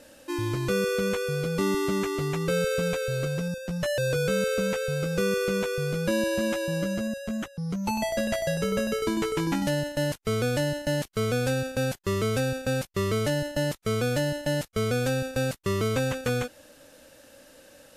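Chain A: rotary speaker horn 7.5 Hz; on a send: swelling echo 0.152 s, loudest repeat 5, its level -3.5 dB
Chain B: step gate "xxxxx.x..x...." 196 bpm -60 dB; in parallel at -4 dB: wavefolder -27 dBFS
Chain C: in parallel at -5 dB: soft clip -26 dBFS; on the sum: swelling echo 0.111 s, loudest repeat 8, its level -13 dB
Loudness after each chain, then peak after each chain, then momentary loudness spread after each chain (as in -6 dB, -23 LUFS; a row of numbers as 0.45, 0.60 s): -23.5, -28.5, -22.5 LUFS; -8.5, -16.0, -9.5 dBFS; 2, 7, 5 LU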